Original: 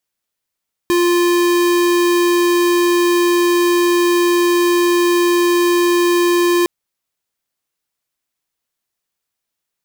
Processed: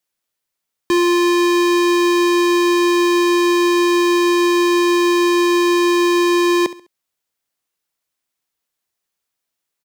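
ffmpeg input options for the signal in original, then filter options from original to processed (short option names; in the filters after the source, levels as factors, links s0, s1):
-f lavfi -i "aevalsrc='0.211*(2*lt(mod(349*t,1),0.5)-1)':d=5.76:s=44100"
-filter_complex "[0:a]acrossover=split=220|7700[s0][s1][s2];[s0]tremolo=f=6.3:d=0.58[s3];[s2]alimiter=level_in=1.33:limit=0.0631:level=0:latency=1,volume=0.75[s4];[s3][s1][s4]amix=inputs=3:normalize=0,aecho=1:1:68|136|204:0.158|0.0523|0.0173"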